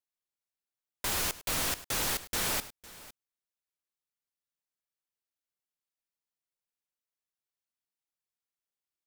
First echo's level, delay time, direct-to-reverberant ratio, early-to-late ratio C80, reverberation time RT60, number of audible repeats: -17.5 dB, 103 ms, no reverb, no reverb, no reverb, 2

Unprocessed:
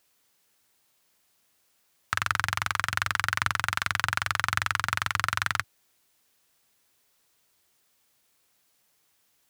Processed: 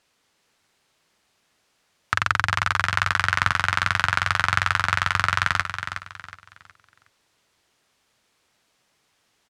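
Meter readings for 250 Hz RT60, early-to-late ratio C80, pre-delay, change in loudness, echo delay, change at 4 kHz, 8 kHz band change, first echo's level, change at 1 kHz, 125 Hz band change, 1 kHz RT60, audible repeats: no reverb, no reverb, no reverb, +5.0 dB, 367 ms, +4.0 dB, 0.0 dB, -8.5 dB, +6.0 dB, +7.0 dB, no reverb, 3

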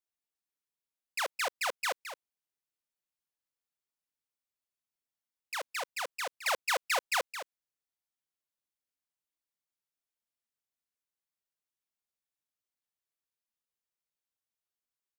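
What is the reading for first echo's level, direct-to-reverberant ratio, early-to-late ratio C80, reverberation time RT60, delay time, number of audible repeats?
-10.5 dB, no reverb, no reverb, no reverb, 216 ms, 1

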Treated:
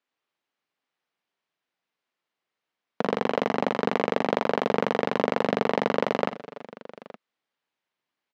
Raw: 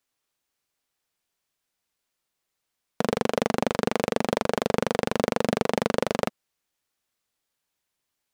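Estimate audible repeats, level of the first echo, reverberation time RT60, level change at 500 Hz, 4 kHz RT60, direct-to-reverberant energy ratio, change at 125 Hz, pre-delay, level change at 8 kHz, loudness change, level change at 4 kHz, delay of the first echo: 3, -8.5 dB, no reverb, +0.5 dB, no reverb, no reverb, -3.5 dB, no reverb, under -10 dB, +0.5 dB, -3.0 dB, 57 ms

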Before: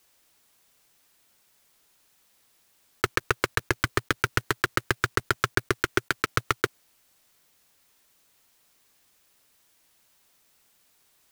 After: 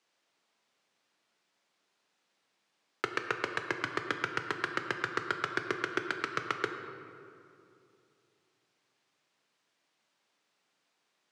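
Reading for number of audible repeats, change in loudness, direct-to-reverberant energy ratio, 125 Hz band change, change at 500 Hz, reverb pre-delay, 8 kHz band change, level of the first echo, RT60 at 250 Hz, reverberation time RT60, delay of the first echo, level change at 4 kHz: no echo, -7.0 dB, 5.0 dB, -15.5 dB, -6.5 dB, 8 ms, -15.0 dB, no echo, 2.9 s, 2.6 s, no echo, -8.5 dB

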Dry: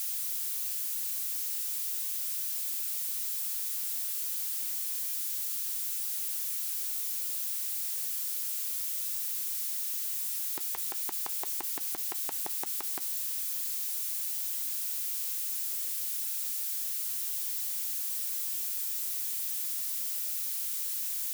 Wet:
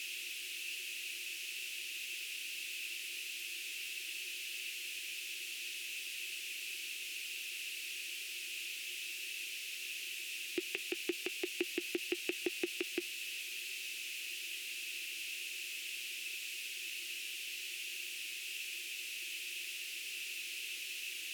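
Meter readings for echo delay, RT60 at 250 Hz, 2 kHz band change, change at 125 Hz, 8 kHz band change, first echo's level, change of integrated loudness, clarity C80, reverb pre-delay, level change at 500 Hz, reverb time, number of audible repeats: no echo, no reverb, +11.0 dB, no reading, -10.0 dB, no echo, -9.5 dB, no reverb, no reverb, +9.5 dB, no reverb, no echo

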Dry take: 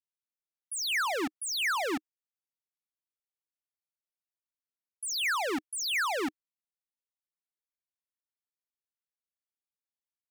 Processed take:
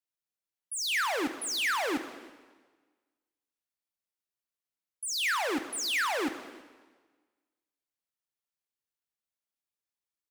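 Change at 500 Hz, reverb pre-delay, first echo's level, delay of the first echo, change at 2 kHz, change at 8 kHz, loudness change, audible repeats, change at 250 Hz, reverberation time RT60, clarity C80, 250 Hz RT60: +0.5 dB, 5 ms, -23.0 dB, 323 ms, +0.5 dB, +0.5 dB, +0.5 dB, 1, +1.0 dB, 1.4 s, 12.0 dB, 1.4 s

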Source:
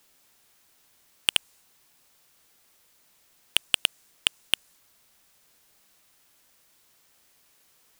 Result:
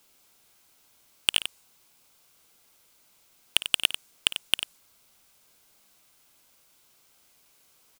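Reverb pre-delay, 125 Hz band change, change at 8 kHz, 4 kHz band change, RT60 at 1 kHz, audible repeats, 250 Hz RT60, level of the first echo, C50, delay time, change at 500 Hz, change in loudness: no reverb, +0.5 dB, +0.5 dB, +0.5 dB, no reverb, 2, no reverb, -15.5 dB, no reverb, 55 ms, +0.5 dB, 0.0 dB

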